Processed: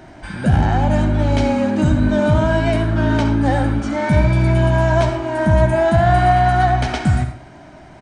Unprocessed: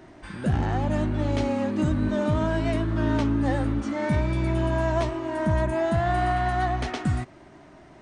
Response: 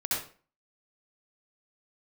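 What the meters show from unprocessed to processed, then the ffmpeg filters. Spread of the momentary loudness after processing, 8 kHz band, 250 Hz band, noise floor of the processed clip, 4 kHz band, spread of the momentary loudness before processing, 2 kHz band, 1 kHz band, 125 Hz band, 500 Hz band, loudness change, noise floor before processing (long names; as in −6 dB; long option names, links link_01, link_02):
6 LU, +8.5 dB, +7.0 dB, −41 dBFS, +9.0 dB, 4 LU, +9.5 dB, +10.0 dB, +10.0 dB, +9.0 dB, +9.0 dB, −50 dBFS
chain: -filter_complex "[0:a]aecho=1:1:1.3:0.35,asplit=2[link_01][link_02];[1:a]atrim=start_sample=2205[link_03];[link_02][link_03]afir=irnorm=-1:irlink=0,volume=-13dB[link_04];[link_01][link_04]amix=inputs=2:normalize=0,volume=6dB"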